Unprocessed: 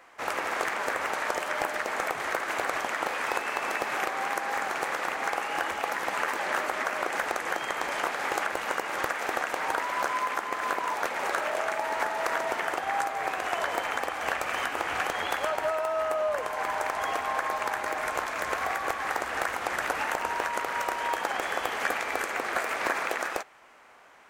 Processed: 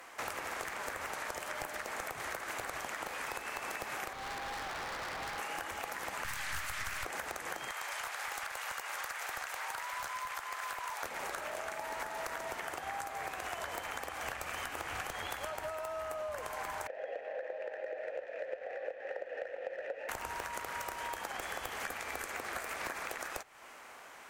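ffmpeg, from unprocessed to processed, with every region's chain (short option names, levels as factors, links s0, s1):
-filter_complex "[0:a]asettb=1/sr,asplit=3[s0][s1][s2];[s0]atrim=end=4.134[s3];[s1]atrim=start=4.13:end=5.39,asetpts=PTS-STARTPTS,afade=t=in:d=0.004:c=qsin,afade=t=out:st=1.256:d=0.004:c=qsin,lowpass=2400,asoftclip=type=hard:threshold=0.0188[s4];[s2]atrim=start=5.386[s5];[s3][s4]acrossfade=d=0.004:c1=hsin:c2=qsin[s6];[s6][s5]acrossfade=d=0.004:c1=qsin:c2=hsin,asettb=1/sr,asplit=3[s7][s8][s9];[s7]atrim=end=6.244[s10];[s8]atrim=start=6.24:end=7.05,asetpts=PTS-STARTPTS,afade=t=in:d=0.004:c=qsin,afade=t=out:st=0.806:d=0.004:c=qsin,highpass=1400,aeval=exprs='(tanh(28.2*val(0)+0.35)-tanh(0.35))/28.2':c=same,acontrast=78[s11];[s9]atrim=start=7.046[s12];[s10][s11]acrossfade=d=0.004:c1=hsin:c2=qsin[s13];[s13][s12]acrossfade=d=0.004:c1=qsin:c2=hsin,asettb=1/sr,asplit=3[s14][s15][s16];[s14]atrim=end=7.704[s17];[s15]atrim=start=7.7:end=11.03,asetpts=PTS-STARTPTS,afade=t=in:d=0.004:c=qsin,afade=t=out:st=3.326:d=0.004:c=qsin,highpass=780,asoftclip=type=hard:threshold=0.0668[s18];[s16]atrim=start=11.026[s19];[s17][s18]acrossfade=d=0.004:c1=hsin:c2=qsin[s20];[s20][s19]acrossfade=d=0.004:c1=qsin:c2=hsin,asettb=1/sr,asplit=3[s21][s22][s23];[s21]atrim=end=16.874[s24];[s22]atrim=start=16.87:end=20.09,asetpts=PTS-STARTPTS,afade=t=in:d=0.004:c=qsin,afade=t=out:st=3.216:d=0.004:c=qsin,asplit=3[s25][s26][s27];[s25]bandpass=f=530:t=q:w=8,volume=1[s28];[s26]bandpass=f=1840:t=q:w=8,volume=0.501[s29];[s27]bandpass=f=2480:t=q:w=8,volume=0.355[s30];[s28][s29][s30]amix=inputs=3:normalize=0,equalizer=f=560:w=0.83:g=12.5,adynamicsmooth=sensitivity=6:basefreq=4800[s31];[s23]atrim=start=20.086[s32];[s24][s31]acrossfade=d=0.004:c1=hsin:c2=qsin[s33];[s33][s32]acrossfade=d=0.004:c1=qsin:c2=hsin,aemphasis=mode=production:type=cd,acrossover=split=130[s34][s35];[s35]acompressor=threshold=0.01:ratio=6[s36];[s34][s36]amix=inputs=2:normalize=0,volume=1.26"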